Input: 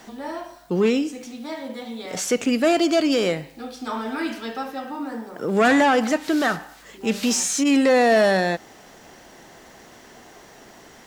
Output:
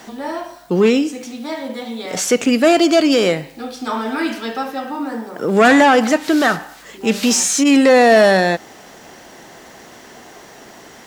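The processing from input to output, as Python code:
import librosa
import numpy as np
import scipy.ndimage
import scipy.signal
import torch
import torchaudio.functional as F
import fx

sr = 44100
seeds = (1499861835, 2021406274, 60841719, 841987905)

y = fx.low_shelf(x, sr, hz=69.0, db=-8.5)
y = y * librosa.db_to_amplitude(6.5)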